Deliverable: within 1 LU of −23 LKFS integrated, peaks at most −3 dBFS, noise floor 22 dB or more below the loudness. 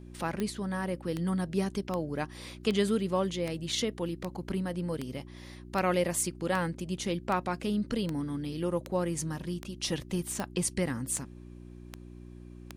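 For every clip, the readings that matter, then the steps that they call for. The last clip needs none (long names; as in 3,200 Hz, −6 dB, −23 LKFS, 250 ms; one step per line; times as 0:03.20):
number of clicks 17; mains hum 60 Hz; hum harmonics up to 360 Hz; level of the hum −45 dBFS; integrated loudness −32.5 LKFS; sample peak −15.0 dBFS; target loudness −23.0 LKFS
→ click removal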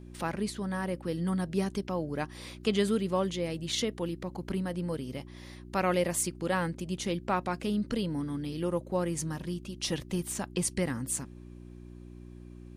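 number of clicks 0; mains hum 60 Hz; hum harmonics up to 360 Hz; level of the hum −45 dBFS
→ hum removal 60 Hz, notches 6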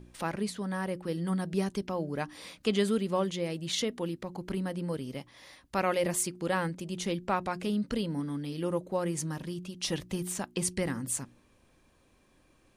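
mains hum none found; integrated loudness −32.5 LKFS; sample peak −15.5 dBFS; target loudness −23.0 LKFS
→ level +9.5 dB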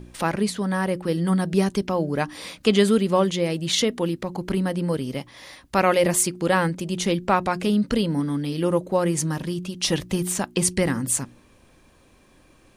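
integrated loudness −23.0 LKFS; sample peak −6.0 dBFS; background noise floor −56 dBFS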